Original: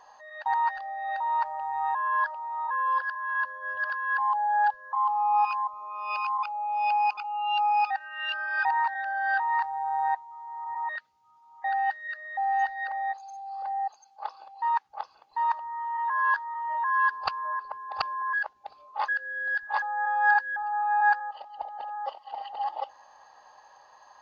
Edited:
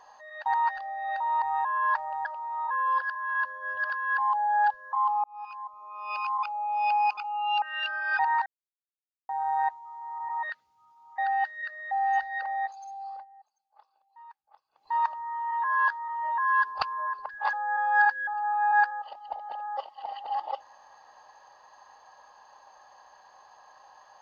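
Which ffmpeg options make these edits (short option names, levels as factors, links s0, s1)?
-filter_complex "[0:a]asplit=11[s0][s1][s2][s3][s4][s5][s6][s7][s8][s9][s10];[s0]atrim=end=1.422[s11];[s1]atrim=start=1.718:end=2.252[s12];[s2]atrim=start=1.418:end=1.722[s13];[s3]atrim=start=2.248:end=5.24,asetpts=PTS-STARTPTS,afade=t=out:st=2.988:d=0.004:c=hsin[s14];[s4]atrim=start=5.24:end=7.622,asetpts=PTS-STARTPTS,afade=t=in:d=1.18[s15];[s5]atrim=start=8.078:end=8.92,asetpts=PTS-STARTPTS,afade=t=out:st=0.838:d=0.004:c=hsin[s16];[s6]atrim=start=8.92:end=9.75,asetpts=PTS-STARTPTS,volume=0[s17];[s7]atrim=start=9.75:end=13.71,asetpts=PTS-STARTPTS,afade=t=in:d=0.004:c=hsin,afade=t=out:st=3.69:d=0.27:c=qsin:silence=0.0668344[s18];[s8]atrim=start=13.71:end=15.17,asetpts=PTS-STARTPTS,volume=0.0668[s19];[s9]atrim=start=15.17:end=17.752,asetpts=PTS-STARTPTS,afade=t=in:d=0.27:c=qsin:silence=0.0668344[s20];[s10]atrim=start=19.578[s21];[s11][s12]acrossfade=d=0.004:c1=hsin:c2=hsin[s22];[s22][s13]acrossfade=d=0.004:c1=hsin:c2=hsin[s23];[s14][s15]concat=n=2:v=0:a=1[s24];[s23][s24]acrossfade=d=0.004:c1=hsin:c2=hsin[s25];[s16][s17][s18][s19][s20]concat=n=5:v=0:a=1[s26];[s25][s26]acrossfade=d=0.004:c1=hsin:c2=hsin[s27];[s27][s21]acrossfade=d=0.004:c1=hsin:c2=hsin"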